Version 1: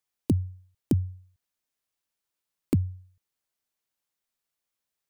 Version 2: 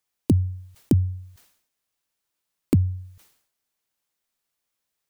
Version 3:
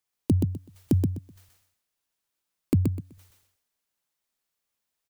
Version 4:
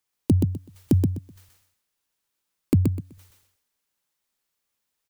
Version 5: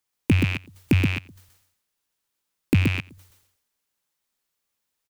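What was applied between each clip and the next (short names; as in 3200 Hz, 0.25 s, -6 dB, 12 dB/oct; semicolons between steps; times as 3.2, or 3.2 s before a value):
sustainer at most 87 dB/s; gain +4.5 dB
feedback echo 0.126 s, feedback 22%, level -4 dB; gain -3.5 dB
notch 680 Hz, Q 12; gain +3 dB
rattling part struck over -31 dBFS, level -15 dBFS; echo 91 ms -24 dB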